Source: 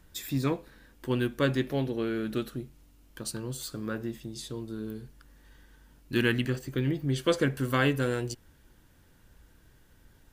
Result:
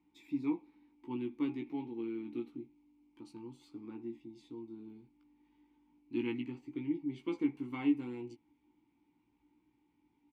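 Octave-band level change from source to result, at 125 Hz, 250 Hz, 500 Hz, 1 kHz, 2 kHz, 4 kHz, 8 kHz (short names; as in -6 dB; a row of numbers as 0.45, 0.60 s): -20.5 dB, -5.0 dB, -13.5 dB, -14.0 dB, -18.5 dB, -20.0 dB, under -30 dB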